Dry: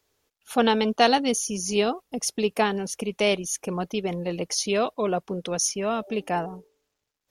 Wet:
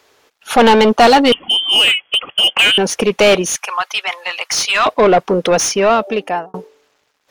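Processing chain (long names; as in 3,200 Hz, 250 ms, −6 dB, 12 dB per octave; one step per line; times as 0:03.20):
0:01.32–0:02.78: voice inversion scrambler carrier 3,300 Hz
0:03.52–0:04.86: high-pass filter 1,000 Hz 24 dB per octave
0:05.62–0:06.54: fade out
mid-hump overdrive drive 24 dB, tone 2,200 Hz, clips at −7 dBFS
level +6.5 dB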